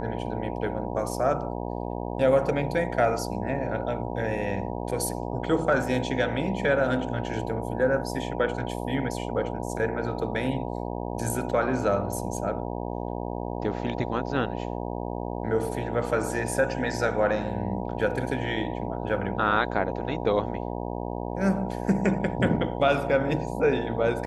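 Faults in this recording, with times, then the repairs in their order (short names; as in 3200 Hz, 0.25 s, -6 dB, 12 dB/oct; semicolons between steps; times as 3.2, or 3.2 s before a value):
buzz 60 Hz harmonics 16 -32 dBFS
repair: de-hum 60 Hz, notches 16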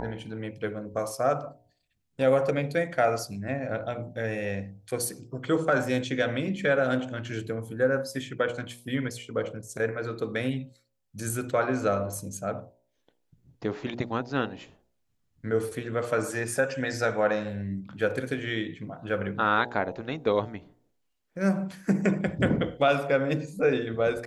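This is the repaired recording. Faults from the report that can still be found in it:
none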